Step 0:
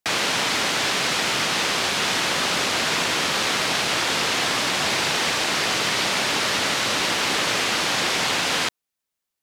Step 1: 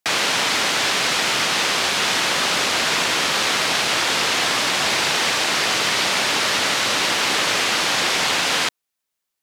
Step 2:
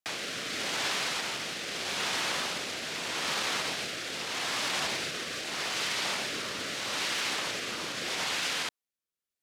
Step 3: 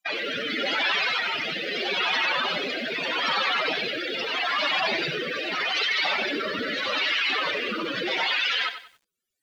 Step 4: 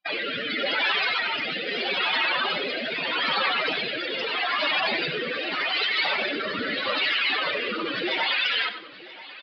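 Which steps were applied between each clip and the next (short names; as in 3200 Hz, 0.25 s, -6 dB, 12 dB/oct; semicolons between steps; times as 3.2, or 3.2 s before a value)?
low shelf 340 Hz -5 dB; gain +3 dB
limiter -14 dBFS, peak gain reduction 6.5 dB; rotary speaker horn 0.8 Hz; gain -7 dB
spectral contrast raised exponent 3.8; lo-fi delay 93 ms, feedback 35%, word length 10-bit, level -10.5 dB; gain +7.5 dB
phaser 0.29 Hz, delay 4.4 ms, feedback 25%; feedback echo 0.984 s, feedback 50%, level -18.5 dB; downsampling 11025 Hz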